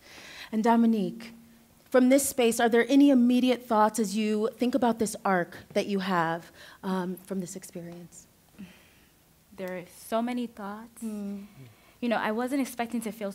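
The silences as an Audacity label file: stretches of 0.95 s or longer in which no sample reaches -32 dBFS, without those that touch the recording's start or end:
7.870000	9.600000	silence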